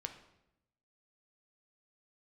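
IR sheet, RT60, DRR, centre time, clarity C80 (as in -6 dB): 0.85 s, 5.5 dB, 14 ms, 12.5 dB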